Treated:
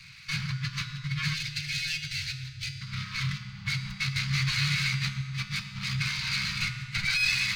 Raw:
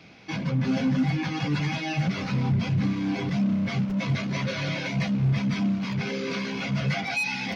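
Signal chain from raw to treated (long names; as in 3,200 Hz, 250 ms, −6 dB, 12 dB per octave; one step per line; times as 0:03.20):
lower of the sound and its delayed copy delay 0.46 ms
0:06.44–0:07.06: low-shelf EQ 230 Hz +10 dB
compressor whose output falls as the input rises −28 dBFS, ratio −0.5
feedback echo with a low-pass in the loop 119 ms, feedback 81%, low-pass 2,200 Hz, level −14.5 dB
0:00.53–0:03.40: gain on a spectral selection 330–960 Hz −27 dB
0:01.34–0:02.81: phaser with its sweep stopped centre 470 Hz, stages 4
elliptic band-stop filter 140–1,200 Hz, stop band 50 dB
parametric band 4,100 Hz +7 dB 0.92 octaves
convolution reverb RT60 1.7 s, pre-delay 3 ms, DRR 7.5 dB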